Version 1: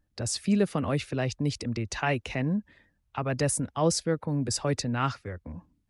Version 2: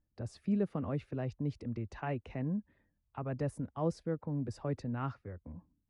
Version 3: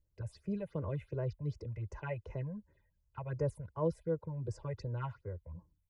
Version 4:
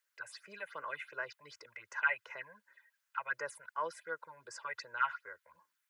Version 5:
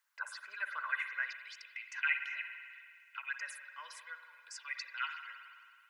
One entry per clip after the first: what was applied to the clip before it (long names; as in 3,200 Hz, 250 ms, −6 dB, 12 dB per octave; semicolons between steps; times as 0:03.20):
drawn EQ curve 250 Hz 0 dB, 1,100 Hz −4 dB, 7,400 Hz −22 dB; level −7 dB
comb filter 2 ms, depth 92%; all-pass phaser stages 6, 2.7 Hz, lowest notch 310–3,900 Hz; level −2 dB
high-pass with resonance 1,500 Hz, resonance Q 3.3; level +9 dB
spring reverb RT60 2.2 s, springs 52 ms, chirp 40 ms, DRR 6.5 dB; high-pass filter sweep 940 Hz → 2,500 Hz, 0:00.19–0:01.54; level +1 dB